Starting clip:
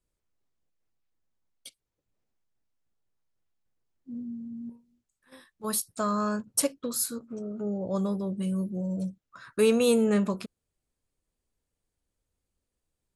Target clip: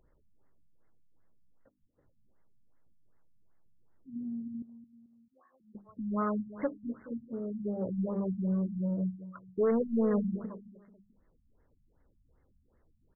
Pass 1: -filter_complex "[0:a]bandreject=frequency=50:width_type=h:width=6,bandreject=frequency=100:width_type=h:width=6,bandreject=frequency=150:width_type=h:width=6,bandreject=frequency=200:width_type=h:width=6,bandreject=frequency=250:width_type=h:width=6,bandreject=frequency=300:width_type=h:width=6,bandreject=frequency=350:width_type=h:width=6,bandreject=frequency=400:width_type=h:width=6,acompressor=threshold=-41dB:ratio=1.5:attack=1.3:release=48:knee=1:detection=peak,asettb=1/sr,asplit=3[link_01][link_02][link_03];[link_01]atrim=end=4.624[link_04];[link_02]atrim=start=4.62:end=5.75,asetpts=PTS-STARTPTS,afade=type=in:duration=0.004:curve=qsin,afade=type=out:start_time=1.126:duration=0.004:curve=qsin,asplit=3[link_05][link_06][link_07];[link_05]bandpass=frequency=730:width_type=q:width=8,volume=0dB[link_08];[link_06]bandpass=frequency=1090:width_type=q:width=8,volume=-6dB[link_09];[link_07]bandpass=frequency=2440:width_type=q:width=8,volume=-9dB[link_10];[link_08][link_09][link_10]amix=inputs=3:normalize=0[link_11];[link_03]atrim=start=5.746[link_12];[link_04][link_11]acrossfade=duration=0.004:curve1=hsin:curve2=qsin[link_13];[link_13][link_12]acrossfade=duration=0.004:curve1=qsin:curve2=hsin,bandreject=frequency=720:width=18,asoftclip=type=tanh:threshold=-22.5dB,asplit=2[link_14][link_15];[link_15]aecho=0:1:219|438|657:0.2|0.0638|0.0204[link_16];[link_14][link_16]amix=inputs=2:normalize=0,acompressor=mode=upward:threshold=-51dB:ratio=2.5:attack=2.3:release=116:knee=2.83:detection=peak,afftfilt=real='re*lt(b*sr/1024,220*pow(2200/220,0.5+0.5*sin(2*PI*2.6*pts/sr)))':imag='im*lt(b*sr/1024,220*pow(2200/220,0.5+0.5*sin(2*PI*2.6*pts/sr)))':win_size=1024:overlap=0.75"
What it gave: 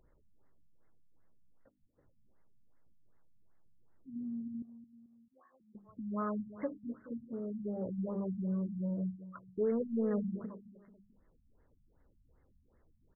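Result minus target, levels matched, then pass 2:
downward compressor: peak gain reduction +9 dB
-filter_complex "[0:a]bandreject=frequency=50:width_type=h:width=6,bandreject=frequency=100:width_type=h:width=6,bandreject=frequency=150:width_type=h:width=6,bandreject=frequency=200:width_type=h:width=6,bandreject=frequency=250:width_type=h:width=6,bandreject=frequency=300:width_type=h:width=6,bandreject=frequency=350:width_type=h:width=6,bandreject=frequency=400:width_type=h:width=6,asettb=1/sr,asplit=3[link_01][link_02][link_03];[link_01]atrim=end=4.624[link_04];[link_02]atrim=start=4.62:end=5.75,asetpts=PTS-STARTPTS,afade=type=in:duration=0.004:curve=qsin,afade=type=out:start_time=1.126:duration=0.004:curve=qsin,asplit=3[link_05][link_06][link_07];[link_05]bandpass=frequency=730:width_type=q:width=8,volume=0dB[link_08];[link_06]bandpass=frequency=1090:width_type=q:width=8,volume=-6dB[link_09];[link_07]bandpass=frequency=2440:width_type=q:width=8,volume=-9dB[link_10];[link_08][link_09][link_10]amix=inputs=3:normalize=0[link_11];[link_03]atrim=start=5.746[link_12];[link_04][link_11]acrossfade=duration=0.004:curve1=hsin:curve2=qsin[link_13];[link_13][link_12]acrossfade=duration=0.004:curve1=qsin:curve2=hsin,bandreject=frequency=720:width=18,asoftclip=type=tanh:threshold=-22.5dB,asplit=2[link_14][link_15];[link_15]aecho=0:1:219|438|657:0.2|0.0638|0.0204[link_16];[link_14][link_16]amix=inputs=2:normalize=0,acompressor=mode=upward:threshold=-51dB:ratio=2.5:attack=2.3:release=116:knee=2.83:detection=peak,afftfilt=real='re*lt(b*sr/1024,220*pow(2200/220,0.5+0.5*sin(2*PI*2.6*pts/sr)))':imag='im*lt(b*sr/1024,220*pow(2200/220,0.5+0.5*sin(2*PI*2.6*pts/sr)))':win_size=1024:overlap=0.75"

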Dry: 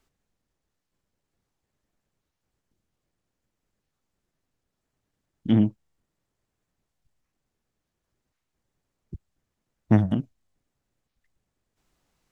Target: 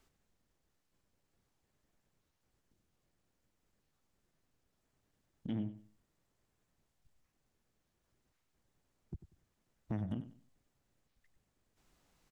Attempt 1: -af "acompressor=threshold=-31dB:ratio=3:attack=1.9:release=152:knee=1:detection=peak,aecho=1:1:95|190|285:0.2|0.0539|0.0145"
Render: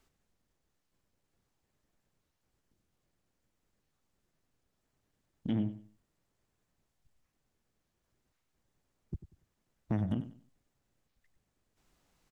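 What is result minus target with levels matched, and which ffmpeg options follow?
downward compressor: peak gain reduction −6 dB
-af "acompressor=threshold=-40dB:ratio=3:attack=1.9:release=152:knee=1:detection=peak,aecho=1:1:95|190|285:0.2|0.0539|0.0145"

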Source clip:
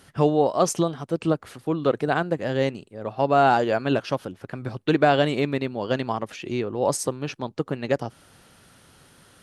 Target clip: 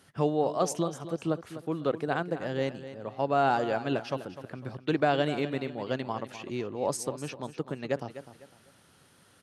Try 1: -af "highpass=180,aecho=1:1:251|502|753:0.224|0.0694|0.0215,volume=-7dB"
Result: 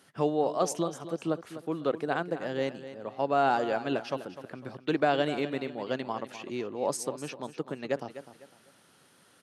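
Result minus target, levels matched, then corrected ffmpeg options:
125 Hz band −4.5 dB
-af "highpass=77,aecho=1:1:251|502|753:0.224|0.0694|0.0215,volume=-7dB"

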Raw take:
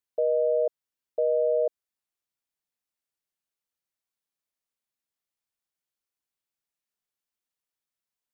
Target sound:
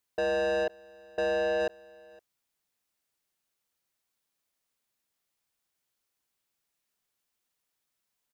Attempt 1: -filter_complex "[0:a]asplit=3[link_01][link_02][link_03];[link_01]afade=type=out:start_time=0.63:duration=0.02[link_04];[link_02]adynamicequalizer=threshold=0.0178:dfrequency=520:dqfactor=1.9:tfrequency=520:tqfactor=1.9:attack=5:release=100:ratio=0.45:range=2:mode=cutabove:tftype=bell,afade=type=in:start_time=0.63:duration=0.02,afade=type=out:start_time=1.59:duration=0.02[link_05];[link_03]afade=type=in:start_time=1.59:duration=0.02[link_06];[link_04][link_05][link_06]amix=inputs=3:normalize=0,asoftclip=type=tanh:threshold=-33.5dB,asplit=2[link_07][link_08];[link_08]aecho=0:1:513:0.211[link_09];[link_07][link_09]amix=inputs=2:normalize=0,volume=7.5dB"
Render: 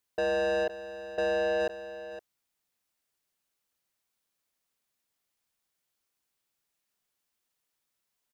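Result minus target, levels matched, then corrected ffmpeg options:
echo-to-direct +11.5 dB
-filter_complex "[0:a]asplit=3[link_01][link_02][link_03];[link_01]afade=type=out:start_time=0.63:duration=0.02[link_04];[link_02]adynamicequalizer=threshold=0.0178:dfrequency=520:dqfactor=1.9:tfrequency=520:tqfactor=1.9:attack=5:release=100:ratio=0.45:range=2:mode=cutabove:tftype=bell,afade=type=in:start_time=0.63:duration=0.02,afade=type=out:start_time=1.59:duration=0.02[link_05];[link_03]afade=type=in:start_time=1.59:duration=0.02[link_06];[link_04][link_05][link_06]amix=inputs=3:normalize=0,asoftclip=type=tanh:threshold=-33.5dB,asplit=2[link_07][link_08];[link_08]aecho=0:1:513:0.0562[link_09];[link_07][link_09]amix=inputs=2:normalize=0,volume=7.5dB"

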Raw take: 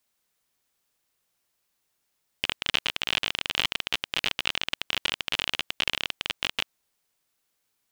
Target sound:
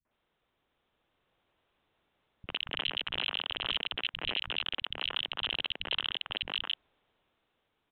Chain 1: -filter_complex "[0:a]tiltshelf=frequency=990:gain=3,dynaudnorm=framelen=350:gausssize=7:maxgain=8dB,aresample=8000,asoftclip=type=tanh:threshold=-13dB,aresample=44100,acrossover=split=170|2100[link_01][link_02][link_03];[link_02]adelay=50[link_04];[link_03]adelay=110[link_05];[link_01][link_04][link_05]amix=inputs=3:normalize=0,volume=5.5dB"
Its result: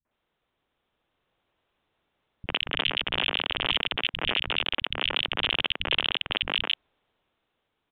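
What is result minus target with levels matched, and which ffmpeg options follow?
soft clipping: distortion −8 dB
-filter_complex "[0:a]tiltshelf=frequency=990:gain=3,dynaudnorm=framelen=350:gausssize=7:maxgain=8dB,aresample=8000,asoftclip=type=tanh:threshold=-24.5dB,aresample=44100,acrossover=split=170|2100[link_01][link_02][link_03];[link_02]adelay=50[link_04];[link_03]adelay=110[link_05];[link_01][link_04][link_05]amix=inputs=3:normalize=0,volume=5.5dB"

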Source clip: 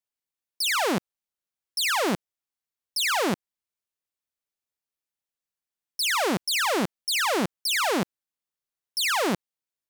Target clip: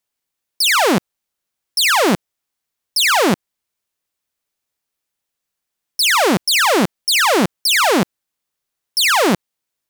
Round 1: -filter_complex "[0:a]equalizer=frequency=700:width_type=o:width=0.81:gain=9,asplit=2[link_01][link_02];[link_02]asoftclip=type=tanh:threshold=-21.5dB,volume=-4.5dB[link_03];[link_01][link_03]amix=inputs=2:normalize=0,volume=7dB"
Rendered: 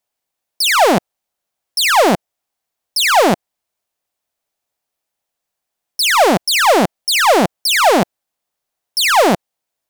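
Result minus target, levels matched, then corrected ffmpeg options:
500 Hz band +3.0 dB
-filter_complex "[0:a]asplit=2[link_01][link_02];[link_02]asoftclip=type=tanh:threshold=-21.5dB,volume=-4.5dB[link_03];[link_01][link_03]amix=inputs=2:normalize=0,volume=7dB"

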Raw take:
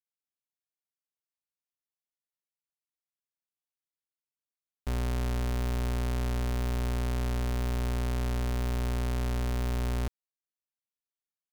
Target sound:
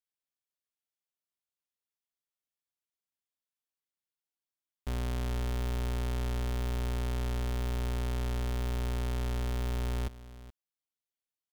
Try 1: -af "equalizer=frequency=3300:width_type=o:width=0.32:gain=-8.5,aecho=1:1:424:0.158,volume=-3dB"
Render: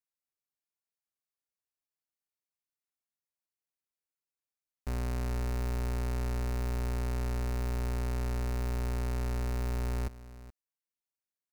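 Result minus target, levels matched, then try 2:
4,000 Hz band −5.0 dB
-af "equalizer=frequency=3300:width_type=o:width=0.32:gain=3.5,aecho=1:1:424:0.158,volume=-3dB"

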